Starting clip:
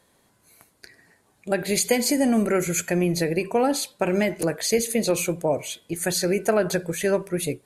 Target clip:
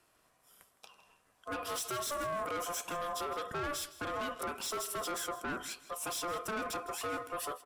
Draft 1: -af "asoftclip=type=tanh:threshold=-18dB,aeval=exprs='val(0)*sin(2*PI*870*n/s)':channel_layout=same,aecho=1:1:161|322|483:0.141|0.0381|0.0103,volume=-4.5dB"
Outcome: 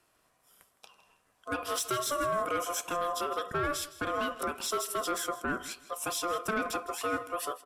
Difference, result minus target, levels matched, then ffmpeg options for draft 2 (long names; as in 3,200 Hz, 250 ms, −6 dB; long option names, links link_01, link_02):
soft clipping: distortion −7 dB
-af "asoftclip=type=tanh:threshold=-27dB,aeval=exprs='val(0)*sin(2*PI*870*n/s)':channel_layout=same,aecho=1:1:161|322|483:0.141|0.0381|0.0103,volume=-4.5dB"